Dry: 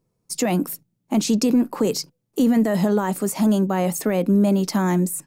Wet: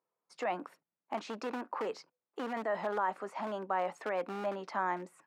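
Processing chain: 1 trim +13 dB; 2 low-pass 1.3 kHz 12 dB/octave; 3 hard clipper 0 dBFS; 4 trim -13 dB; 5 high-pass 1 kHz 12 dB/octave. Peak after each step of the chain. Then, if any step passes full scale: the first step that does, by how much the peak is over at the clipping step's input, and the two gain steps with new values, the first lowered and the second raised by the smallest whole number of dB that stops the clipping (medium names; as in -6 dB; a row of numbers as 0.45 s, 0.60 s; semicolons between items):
+3.5 dBFS, +3.5 dBFS, 0.0 dBFS, -13.0 dBFS, -20.0 dBFS; step 1, 3.5 dB; step 1 +9 dB, step 4 -9 dB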